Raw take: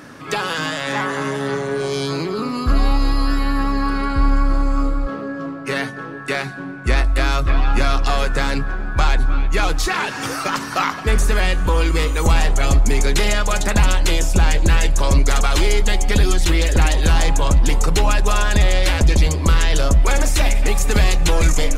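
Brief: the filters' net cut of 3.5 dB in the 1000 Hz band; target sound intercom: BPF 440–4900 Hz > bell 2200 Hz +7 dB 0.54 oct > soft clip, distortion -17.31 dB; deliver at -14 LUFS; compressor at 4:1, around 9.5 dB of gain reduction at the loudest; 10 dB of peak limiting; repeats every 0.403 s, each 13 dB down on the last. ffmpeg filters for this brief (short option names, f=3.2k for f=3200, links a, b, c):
-af "equalizer=f=1k:t=o:g=-5,acompressor=threshold=-22dB:ratio=4,alimiter=limit=-20.5dB:level=0:latency=1,highpass=440,lowpass=4.9k,equalizer=f=2.2k:t=o:w=0.54:g=7,aecho=1:1:403|806|1209:0.224|0.0493|0.0108,asoftclip=threshold=-24.5dB,volume=20.5dB"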